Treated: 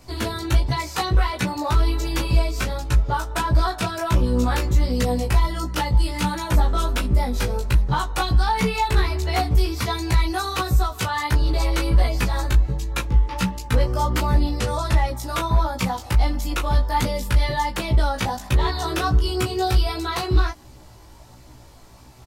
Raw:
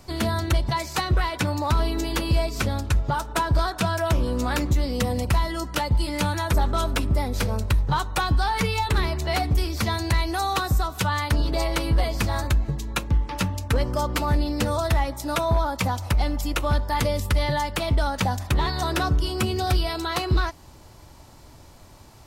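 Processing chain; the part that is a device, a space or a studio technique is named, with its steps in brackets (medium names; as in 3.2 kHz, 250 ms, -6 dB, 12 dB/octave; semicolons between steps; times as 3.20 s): double-tracked vocal (doubling 16 ms -3 dB; chorus 1.4 Hz, delay 15.5 ms, depth 3.2 ms); 14.59–15.08 s: low-pass 12 kHz 24 dB/octave; trim +2 dB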